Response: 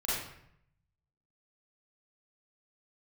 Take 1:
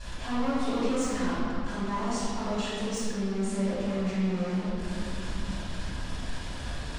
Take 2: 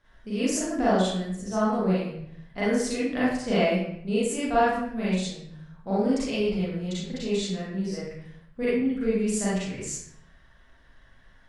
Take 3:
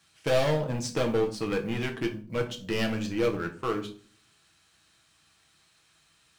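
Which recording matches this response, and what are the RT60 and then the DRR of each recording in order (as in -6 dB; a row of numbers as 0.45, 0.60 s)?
2; 2.6, 0.70, 0.45 s; -14.0, -10.0, 2.5 dB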